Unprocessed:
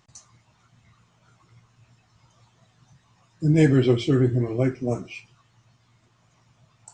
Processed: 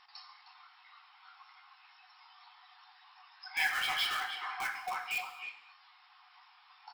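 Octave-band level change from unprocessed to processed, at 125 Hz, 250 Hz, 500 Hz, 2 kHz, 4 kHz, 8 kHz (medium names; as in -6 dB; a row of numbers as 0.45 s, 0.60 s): under -40 dB, under -40 dB, -31.0 dB, +4.0 dB, +3.5 dB, no reading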